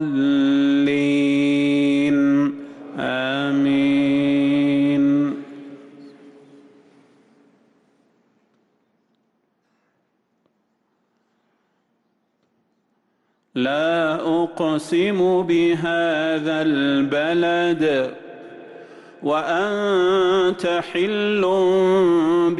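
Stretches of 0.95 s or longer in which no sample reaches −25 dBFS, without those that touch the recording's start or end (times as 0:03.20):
0:05.40–0:13.56
0:18.13–0:19.24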